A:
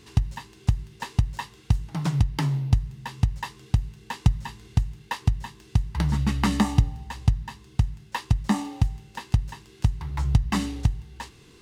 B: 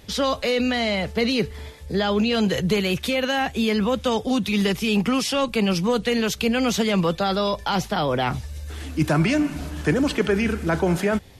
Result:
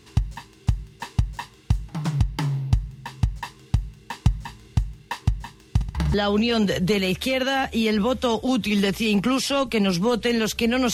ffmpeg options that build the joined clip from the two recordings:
-filter_complex "[0:a]asettb=1/sr,asplit=3[a][b][c];[a]atrim=end=5.694[d];[b]atrim=start=5.69:end=6.14,asetpts=PTS-STARTPTS,afade=t=in:d=0.004:c=qsin,afade=t=out:st=0.446:d=0.004:c=qsin,aecho=1:1:54|59|132:0.251|0.251|0.178,atrim=end_sample=19845[e];[c]atrim=start=6.136[f];[d][e]acrossfade=d=0.004:c1=hsin:c2=qsin[g];[g][f]acrossfade=d=0.004:c1=qsin:c2=hsin,apad=whole_dur=10.93,atrim=end=10.93,atrim=end=6.142[h];[1:a]atrim=start=1.958:end=6.75[i];[h][i]acrossfade=d=0.004:c1=hsin:c2=hsin"

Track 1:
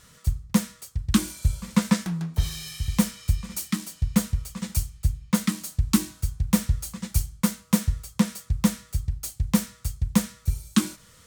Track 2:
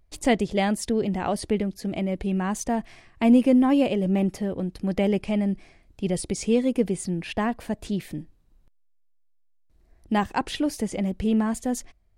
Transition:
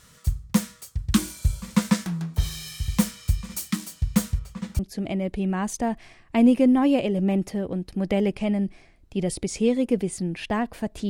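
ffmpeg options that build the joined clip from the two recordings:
-filter_complex "[0:a]asplit=3[a][b][c];[a]afade=t=out:st=4.38:d=0.02[d];[b]lowpass=f=2k:p=1,afade=t=in:st=4.38:d=0.02,afade=t=out:st=4.79:d=0.02[e];[c]afade=t=in:st=4.79:d=0.02[f];[d][e][f]amix=inputs=3:normalize=0,apad=whole_dur=11.09,atrim=end=11.09,atrim=end=4.792[g];[1:a]atrim=start=1.658:end=7.96[h];[g][h]acrossfade=d=0.004:c1=hsin:c2=hsin"

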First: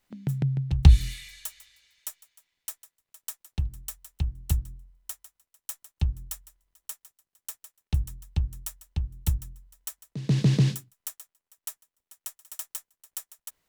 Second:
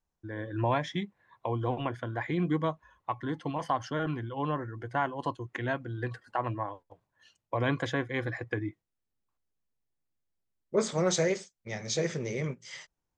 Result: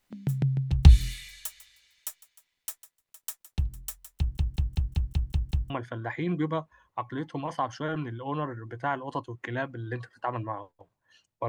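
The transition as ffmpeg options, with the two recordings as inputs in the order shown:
-filter_complex "[0:a]apad=whole_dur=11.48,atrim=end=11.48,asplit=8[a][b][c][d][e][f][g][h];[a]atrim=end=4.372[i];[b]atrim=start=4.178:end=4.372[j];[c]atrim=start=4.178:end=4.372[k];[d]atrim=start=4.178:end=4.372[l];[e]atrim=start=4.178:end=4.372[m];[f]atrim=start=4.178:end=4.372[n];[g]atrim=start=4.178:end=4.372[o];[h]atrim=start=4.178:end=4.372[p];[1:a]atrim=start=1.808:end=7.59[q];[i][j]acrossfade=d=0.004:c1=hsin:c2=hsin[r];[r][k]acrossfade=d=0.004:c1=hsin:c2=hsin[s];[s][l]acrossfade=d=0.004:c1=hsin:c2=hsin[t];[t][m]acrossfade=d=0.004:c1=hsin:c2=hsin[u];[u][n]acrossfade=d=0.004:c1=hsin:c2=hsin[v];[v][o]acrossfade=d=0.004:c1=hsin:c2=hsin[w];[w][p]acrossfade=d=0.004:c1=hsin:c2=hsin[x];[x][q]acrossfade=d=0.004:c1=hsin:c2=hsin"

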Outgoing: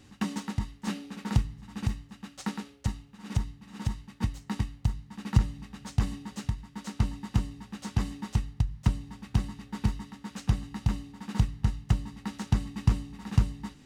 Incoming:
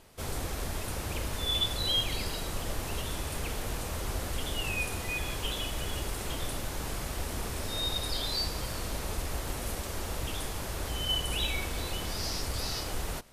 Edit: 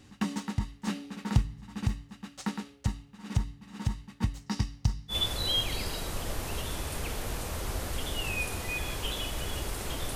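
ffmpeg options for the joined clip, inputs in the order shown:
-filter_complex "[0:a]asettb=1/sr,asplit=3[a][b][c];[a]atrim=end=4.464[d];[b]atrim=start=4.46:end=5.16,asetpts=PTS-STARTPTS,afade=t=in:d=0.004:c=qsin,afade=t=out:st=0.696:d=0.004:c=qsin,equalizer=f=5.3k:t=o:w=0.51:g=12.5[e];[c]atrim=start=5.156[f];[d][e]acrossfade=d=0.004:c1=hsin:c2=qsin[g];[g][f]acrossfade=d=0.004:c1=qsin:c2=hsin,apad=whole_dur=10.15,atrim=end=10.15,atrim=end=5.16,asetpts=PTS-STARTPTS[h];[1:a]atrim=start=1.48:end=6.55,asetpts=PTS-STARTPTS[i];[h][i]acrossfade=d=0.08:c1=tri:c2=tri"

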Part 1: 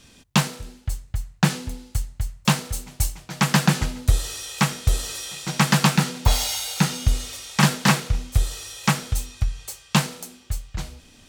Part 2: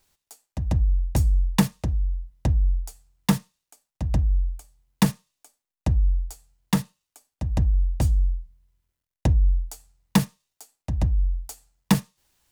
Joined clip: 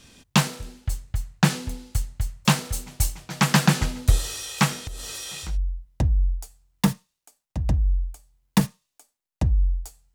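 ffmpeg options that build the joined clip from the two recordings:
-filter_complex "[0:a]asettb=1/sr,asplit=3[a][b][c];[a]atrim=end=4.764[d];[b]atrim=start=4.76:end=5.58,asetpts=PTS-STARTPTS,afade=t=in:d=0.004:c=qsin,afade=t=out:st=0.816:d=0.004:c=qsin,acompressor=threshold=-30dB:ratio=12:attack=3.2:release=140:knee=1:detection=peak[e];[c]atrim=start=5.576[f];[d][e]acrossfade=d=0.004:c1=hsin:c2=qsin[g];[g][f]acrossfade=d=0.004:c1=qsin:c2=hsin,apad=whole_dur=10.14,atrim=end=10.14,atrim=end=5.58,asetpts=PTS-STARTPTS[h];[1:a]atrim=start=1.87:end=6.59,asetpts=PTS-STARTPTS[i];[h][i]acrossfade=d=0.16:c1=tri:c2=tri"

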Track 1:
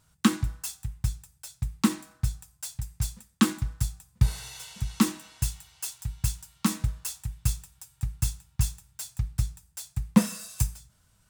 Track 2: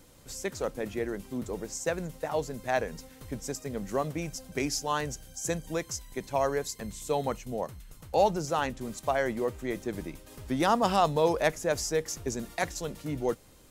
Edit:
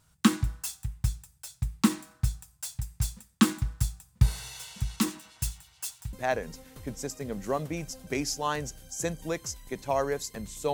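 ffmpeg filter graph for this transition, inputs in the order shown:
-filter_complex "[0:a]asettb=1/sr,asplit=3[a][b][c];[a]atrim=end=4.964[d];[b]atrim=start=4.96:end=6.13,asetpts=PTS-STARTPTS,afade=t=in:d=0.004:c=qsin,afade=t=out:st=1.166:d=0.004:c=qsin,acrossover=split=2200[e][f];[e]aeval=exprs='val(0)*(1-0.5/2+0.5/2*cos(2*PI*9.4*n/s))':c=same[g];[f]aeval=exprs='val(0)*(1-0.5/2-0.5/2*cos(2*PI*9.4*n/s))':c=same[h];[g][h]amix=inputs=2:normalize=0[i];[c]atrim=start=6.126[j];[d][i]acrossfade=d=0.004:c1=hsin:c2=qsin[k];[k][j]acrossfade=d=0.004:c1=qsin:c2=hsin,apad=whole_dur=10.73,atrim=end=10.73,atrim=end=6.132[l];[1:a]atrim=start=2.578:end=7.18[m];[l][m]acrossfade=d=0.004:c1=hsin:c2=hsin"

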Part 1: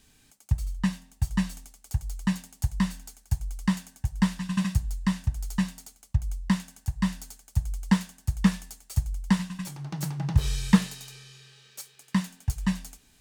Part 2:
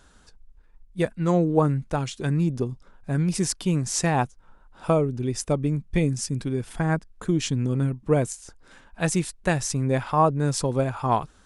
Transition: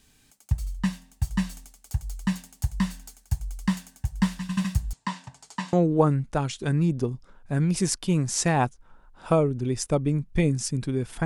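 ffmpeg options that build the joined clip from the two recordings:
-filter_complex "[0:a]asettb=1/sr,asplit=3[a][b][c];[a]atrim=end=4.934[d];[b]atrim=start=4.93:end=5.73,asetpts=PTS-STARTPTS,afade=t=in:d=0.004:c=qsin,afade=t=out:st=0.796:d=0.004:c=qsin,highpass=f=170:w=0.5412,highpass=f=170:w=1.3066,equalizer=f=200:t=q:w=4:g=-10,equalizer=f=950:t=q:w=4:g=9,equalizer=f=6.2k:t=q:w=4:g=-3,lowpass=f=8k:w=0.5412,lowpass=f=8k:w=1.3066[e];[c]atrim=start=5.726[f];[d][e]acrossfade=d=0.004:c1=hsin:c2=qsin[g];[g][f]acrossfade=d=0.004:c1=qsin:c2=hsin,apad=whole_dur=11.25,atrim=end=11.25,atrim=end=5.732[h];[1:a]atrim=start=1.308:end=6.83[i];[h][i]acrossfade=d=0.004:c1=hsin:c2=hsin"

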